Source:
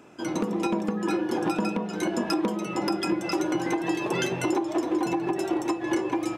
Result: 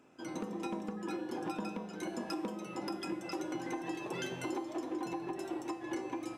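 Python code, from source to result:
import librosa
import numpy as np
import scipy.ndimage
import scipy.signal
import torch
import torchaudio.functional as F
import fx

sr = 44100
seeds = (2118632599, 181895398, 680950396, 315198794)

y = fx.comb_fb(x, sr, f0_hz=260.0, decay_s=1.2, harmonics='all', damping=0.0, mix_pct=80)
y = F.gain(torch.from_numpy(y), 1.0).numpy()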